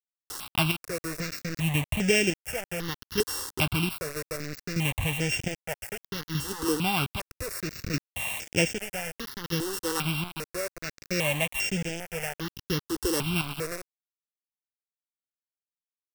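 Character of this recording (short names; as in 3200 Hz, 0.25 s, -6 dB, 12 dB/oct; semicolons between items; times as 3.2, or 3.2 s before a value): a buzz of ramps at a fixed pitch in blocks of 16 samples; chopped level 0.63 Hz, depth 60%, duty 45%; a quantiser's noise floor 6-bit, dither none; notches that jump at a steady rate 2.5 Hz 640–4100 Hz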